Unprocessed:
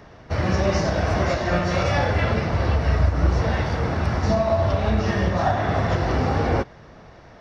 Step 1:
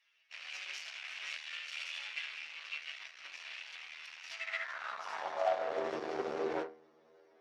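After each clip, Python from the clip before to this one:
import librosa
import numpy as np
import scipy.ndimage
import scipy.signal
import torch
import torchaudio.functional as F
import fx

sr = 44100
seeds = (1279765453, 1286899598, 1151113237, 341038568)

y = fx.stiff_resonator(x, sr, f0_hz=77.0, decay_s=0.47, stiffness=0.002)
y = fx.cheby_harmonics(y, sr, harmonics=(3, 7, 8), levels_db=(-14, -43, -22), full_scale_db=-18.0)
y = fx.filter_sweep_highpass(y, sr, from_hz=2600.0, to_hz=390.0, start_s=4.33, end_s=5.84, q=3.5)
y = y * librosa.db_to_amplitude(-2.0)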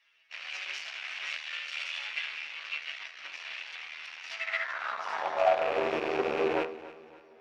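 y = fx.rattle_buzz(x, sr, strikes_db=-52.0, level_db=-32.0)
y = fx.high_shelf(y, sr, hz=6300.0, db=-11.5)
y = fx.echo_feedback(y, sr, ms=282, feedback_pct=41, wet_db=-16.5)
y = y * librosa.db_to_amplitude(7.5)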